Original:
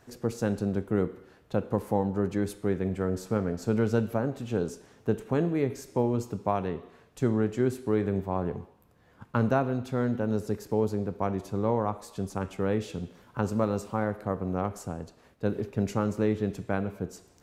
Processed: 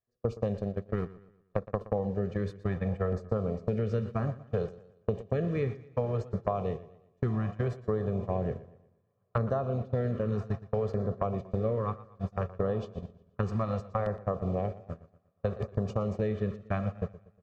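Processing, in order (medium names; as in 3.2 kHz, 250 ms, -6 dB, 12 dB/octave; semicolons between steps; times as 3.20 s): distance through air 170 m; echo that smears into a reverb 948 ms, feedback 79%, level -15.5 dB; 0.62–1.81 s: power-law waveshaper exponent 1.4; LFO notch saw down 0.64 Hz 230–3200 Hz; gate -31 dBFS, range -42 dB; comb 1.7 ms, depth 70%; compression, threshold -32 dBFS, peak gain reduction 13 dB; modulated delay 119 ms, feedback 41%, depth 66 cents, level -17 dB; trim +5.5 dB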